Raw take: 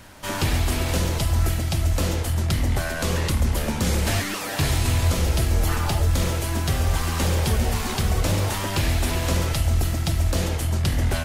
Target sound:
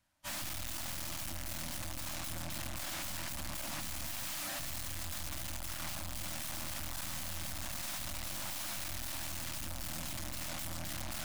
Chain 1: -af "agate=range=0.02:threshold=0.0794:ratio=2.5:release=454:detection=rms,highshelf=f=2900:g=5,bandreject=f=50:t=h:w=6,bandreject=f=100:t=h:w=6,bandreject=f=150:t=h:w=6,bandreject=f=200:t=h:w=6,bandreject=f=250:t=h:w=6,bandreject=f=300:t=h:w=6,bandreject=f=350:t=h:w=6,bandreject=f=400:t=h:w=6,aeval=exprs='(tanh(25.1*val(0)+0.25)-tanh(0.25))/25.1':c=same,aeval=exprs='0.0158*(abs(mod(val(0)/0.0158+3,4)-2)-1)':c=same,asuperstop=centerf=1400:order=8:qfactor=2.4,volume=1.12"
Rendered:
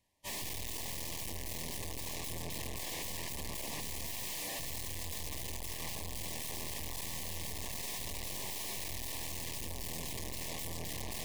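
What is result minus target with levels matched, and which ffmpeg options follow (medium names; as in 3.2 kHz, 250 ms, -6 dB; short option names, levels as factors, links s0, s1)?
500 Hz band +3.5 dB
-af "agate=range=0.02:threshold=0.0794:ratio=2.5:release=454:detection=rms,highshelf=f=2900:g=5,bandreject=f=50:t=h:w=6,bandreject=f=100:t=h:w=6,bandreject=f=150:t=h:w=6,bandreject=f=200:t=h:w=6,bandreject=f=250:t=h:w=6,bandreject=f=300:t=h:w=6,bandreject=f=350:t=h:w=6,bandreject=f=400:t=h:w=6,aeval=exprs='(tanh(25.1*val(0)+0.25)-tanh(0.25))/25.1':c=same,aeval=exprs='0.0158*(abs(mod(val(0)/0.0158+3,4)-2)-1)':c=same,asuperstop=centerf=430:order=8:qfactor=2.4,volume=1.12"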